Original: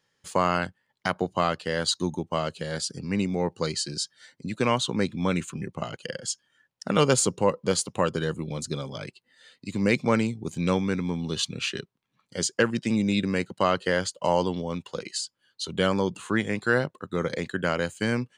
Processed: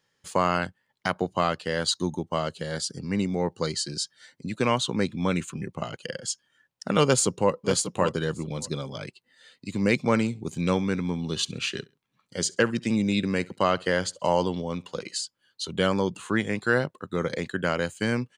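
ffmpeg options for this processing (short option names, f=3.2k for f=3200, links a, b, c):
-filter_complex "[0:a]asettb=1/sr,asplit=3[a][b][c];[a]atrim=end=1.944[d];[b]atrim=start=1.94:end=3.9,asetpts=PTS-STARTPTS,afade=t=in:d=0.004:c=qsin,afade=t=out:st=1.956:d=0.004:c=qsin,bandreject=f=2.5k:w=8.1[e];[c]atrim=start=3.896[f];[d][e]acrossfade=d=0.004:c1=hsin:c2=qsin[g];[g][f]acrossfade=d=0.004:c1=qsin:c2=hsin,asplit=2[h][i];[i]afade=t=in:st=7.05:d=0.01,afade=t=out:st=7.53:d=0.01,aecho=0:1:590|1180:0.334965|0.0502448[j];[h][j]amix=inputs=2:normalize=0,asettb=1/sr,asplit=3[k][l][m];[k]atrim=end=10.094[n];[l]atrim=start=10.09:end=15.22,asetpts=PTS-STARTPTS,afade=t=in:d=0.004:c=qsin,afade=t=out:st=5.126:d=0.004:c=qsin,aecho=1:1:67|134:0.0631|0.0189,atrim=end_sample=226233[o];[m]atrim=start=15.216[p];[n][o]acrossfade=d=0.004:c1=hsin:c2=qsin[q];[q][p]acrossfade=d=0.004:c1=qsin:c2=hsin"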